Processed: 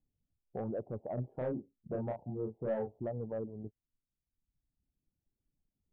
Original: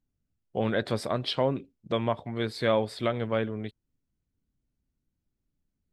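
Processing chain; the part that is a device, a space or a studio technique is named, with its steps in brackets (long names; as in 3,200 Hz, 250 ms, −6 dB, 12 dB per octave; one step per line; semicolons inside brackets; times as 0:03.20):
Chebyshev low-pass filter 840 Hz, order 5
reverb reduction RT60 1.1 s
soft clipper into limiter (soft clipping −21 dBFS, distortion −16 dB; brickwall limiter −29 dBFS, peak gain reduction 7.5 dB)
0:01.14–0:02.98: double-tracking delay 32 ms −3.5 dB
level −1.5 dB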